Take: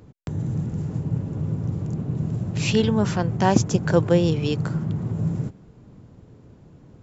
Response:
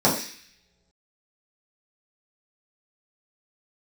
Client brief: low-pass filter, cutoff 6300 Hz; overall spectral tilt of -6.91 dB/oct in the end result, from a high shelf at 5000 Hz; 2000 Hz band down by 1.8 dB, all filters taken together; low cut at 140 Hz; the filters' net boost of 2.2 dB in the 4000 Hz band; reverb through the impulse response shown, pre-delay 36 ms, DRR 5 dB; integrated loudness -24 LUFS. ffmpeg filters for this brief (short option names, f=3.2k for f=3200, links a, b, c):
-filter_complex "[0:a]highpass=140,lowpass=6.3k,equalizer=f=2k:t=o:g=-4,equalizer=f=4k:t=o:g=8.5,highshelf=f=5k:g=-7,asplit=2[a][b];[1:a]atrim=start_sample=2205,adelay=36[c];[b][c]afir=irnorm=-1:irlink=0,volume=-23.5dB[d];[a][d]amix=inputs=2:normalize=0,volume=-2dB"